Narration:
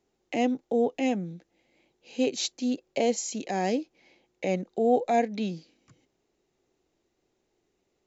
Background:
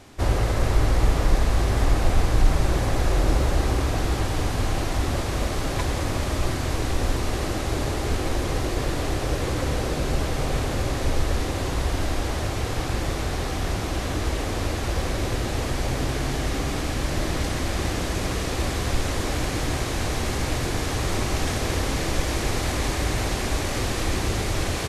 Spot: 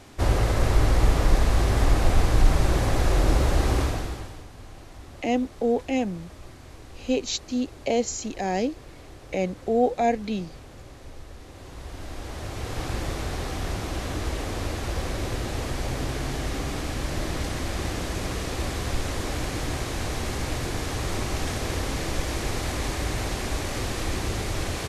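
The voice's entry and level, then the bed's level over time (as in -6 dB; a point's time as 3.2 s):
4.90 s, +1.5 dB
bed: 3.82 s 0 dB
4.47 s -19.5 dB
11.38 s -19.5 dB
12.85 s -3.5 dB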